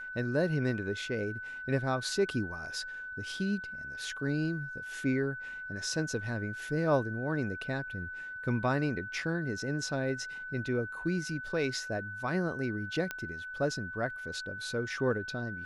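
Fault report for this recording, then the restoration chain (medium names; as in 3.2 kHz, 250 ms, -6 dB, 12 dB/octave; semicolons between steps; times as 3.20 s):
whine 1.5 kHz -39 dBFS
13.11 s: pop -19 dBFS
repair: de-click; band-stop 1.5 kHz, Q 30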